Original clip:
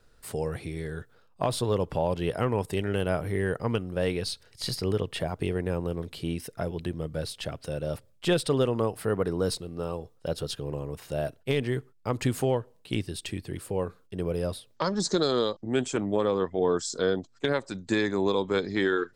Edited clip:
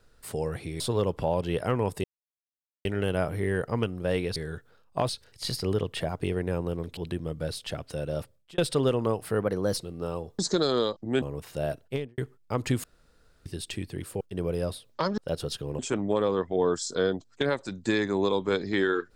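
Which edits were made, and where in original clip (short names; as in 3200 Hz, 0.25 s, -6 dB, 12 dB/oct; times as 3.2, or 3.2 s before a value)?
0.8–1.53 move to 4.28
2.77 insert silence 0.81 s
6.16–6.71 cut
7.93–8.32 fade out
9.16–9.55 speed 109%
10.16–10.77 swap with 14.99–15.82
11.38–11.73 studio fade out
12.39–13.01 room tone
13.76–14.02 cut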